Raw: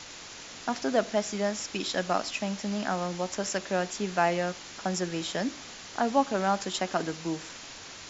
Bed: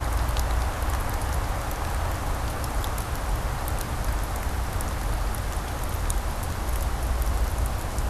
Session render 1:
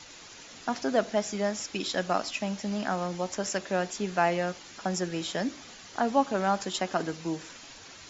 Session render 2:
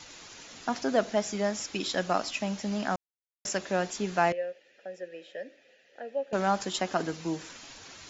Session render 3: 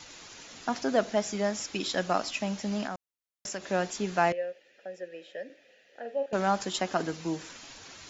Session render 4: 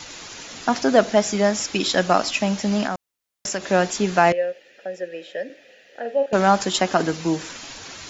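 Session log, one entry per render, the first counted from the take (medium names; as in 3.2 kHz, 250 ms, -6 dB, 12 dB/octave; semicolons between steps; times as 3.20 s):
noise reduction 7 dB, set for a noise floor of -45 dBFS
2.96–3.45 s: mute; 4.32–6.33 s: vowel filter e
2.86–3.70 s: compression 2:1, threshold -36 dBFS; 5.45–6.26 s: doubling 47 ms -7.5 dB
trim +10 dB; peak limiter -3 dBFS, peak gain reduction 2 dB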